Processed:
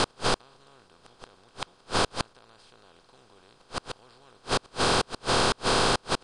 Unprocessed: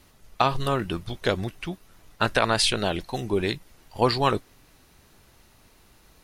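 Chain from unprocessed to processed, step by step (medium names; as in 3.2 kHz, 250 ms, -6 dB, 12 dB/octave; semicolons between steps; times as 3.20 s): spectral levelling over time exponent 0.2; steep low-pass 9.6 kHz 36 dB/octave; in parallel at -1 dB: peak limiter -4 dBFS, peak gain reduction 7 dB; on the sum: inverted gate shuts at -4 dBFS, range -38 dB; trim -7.5 dB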